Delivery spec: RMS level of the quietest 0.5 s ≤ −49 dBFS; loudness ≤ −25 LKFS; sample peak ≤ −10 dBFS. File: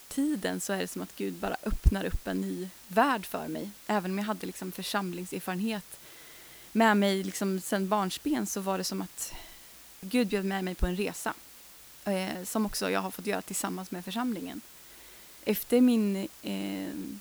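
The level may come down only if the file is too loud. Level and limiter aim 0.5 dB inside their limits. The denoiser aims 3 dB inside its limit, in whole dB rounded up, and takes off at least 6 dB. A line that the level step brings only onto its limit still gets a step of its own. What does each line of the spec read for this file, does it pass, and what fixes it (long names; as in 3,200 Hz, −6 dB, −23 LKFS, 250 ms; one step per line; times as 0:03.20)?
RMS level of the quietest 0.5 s −51 dBFS: in spec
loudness −31.0 LKFS: in spec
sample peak −9.0 dBFS: out of spec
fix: brickwall limiter −10.5 dBFS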